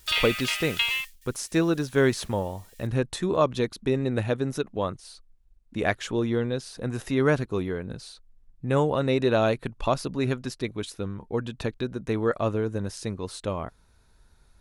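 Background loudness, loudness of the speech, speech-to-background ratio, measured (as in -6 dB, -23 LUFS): -26.5 LUFS, -27.5 LUFS, -1.0 dB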